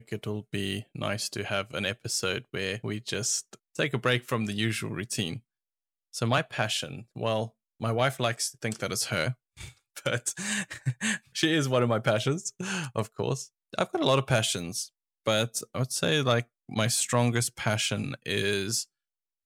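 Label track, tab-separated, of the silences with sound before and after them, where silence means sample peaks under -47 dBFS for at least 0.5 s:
5.390000	6.130000	silence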